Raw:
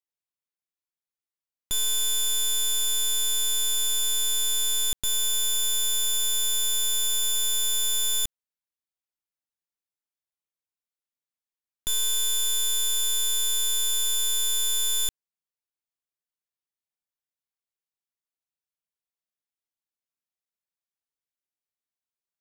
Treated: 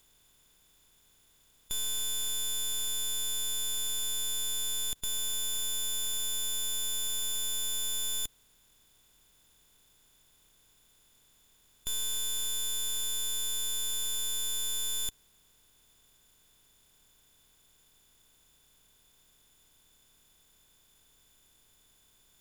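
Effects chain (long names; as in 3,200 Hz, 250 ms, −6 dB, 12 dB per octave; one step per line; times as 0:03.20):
compressor on every frequency bin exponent 0.4
level −8 dB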